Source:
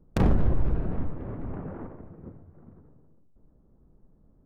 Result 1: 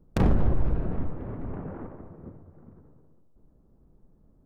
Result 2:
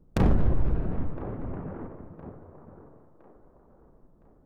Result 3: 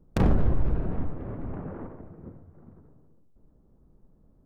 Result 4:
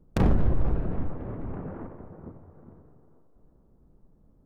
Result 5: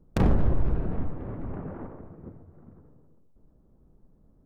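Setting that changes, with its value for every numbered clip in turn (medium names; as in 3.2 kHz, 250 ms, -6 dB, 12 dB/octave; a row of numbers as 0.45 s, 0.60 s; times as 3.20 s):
feedback echo behind a band-pass, time: 202 ms, 1013 ms, 70 ms, 447 ms, 129 ms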